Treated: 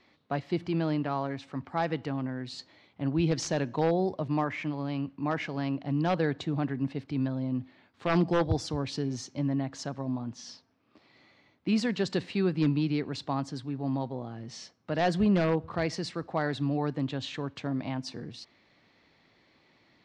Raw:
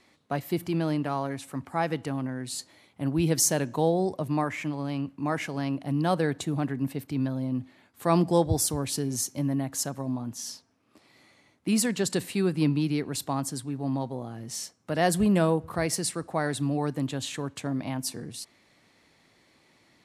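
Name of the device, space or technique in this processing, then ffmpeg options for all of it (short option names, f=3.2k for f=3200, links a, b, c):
synthesiser wavefolder: -af "aeval=exprs='0.168*(abs(mod(val(0)/0.168+3,4)-2)-1)':c=same,lowpass=f=4.9k:w=0.5412,lowpass=f=4.9k:w=1.3066,volume=-1.5dB"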